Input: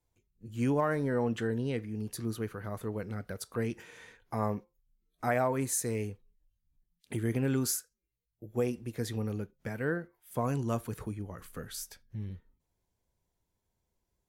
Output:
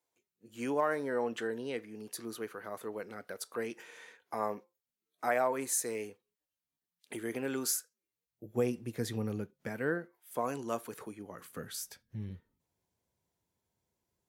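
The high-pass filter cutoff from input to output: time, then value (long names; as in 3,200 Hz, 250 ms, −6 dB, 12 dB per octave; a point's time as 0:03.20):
0:07.78 370 Hz
0:08.59 110 Hz
0:09.34 110 Hz
0:10.42 340 Hz
0:11.13 340 Hz
0:11.79 97 Hz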